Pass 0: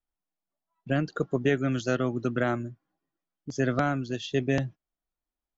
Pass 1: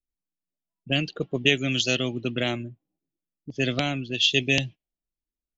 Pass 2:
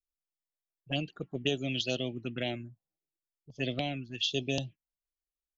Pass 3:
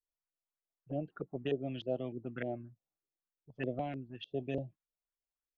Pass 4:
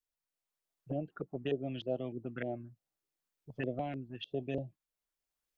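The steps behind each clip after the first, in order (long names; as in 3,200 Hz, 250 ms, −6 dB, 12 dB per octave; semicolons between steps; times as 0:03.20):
high shelf with overshoot 2,000 Hz +12 dB, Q 3; low-pass that shuts in the quiet parts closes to 370 Hz, open at −18.5 dBFS
phaser swept by the level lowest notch 210 Hz, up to 2,100 Hz, full sweep at −19 dBFS; dynamic equaliser 690 Hz, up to +6 dB, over −45 dBFS, Q 1.6; level −7.5 dB
auto-filter low-pass saw up 3.3 Hz 410–1,800 Hz; level −5.5 dB
camcorder AGC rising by 6.9 dB per second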